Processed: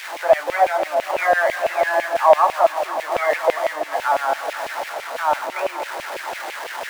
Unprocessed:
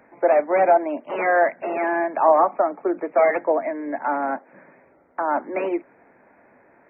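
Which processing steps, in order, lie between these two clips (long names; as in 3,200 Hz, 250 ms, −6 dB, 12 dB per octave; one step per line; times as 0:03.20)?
converter with a step at zero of −25 dBFS
feedback echo with a low-pass in the loop 238 ms, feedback 84%, low-pass 2,600 Hz, level −10.5 dB
auto-filter high-pass saw down 6 Hz 530–2,600 Hz
level −2 dB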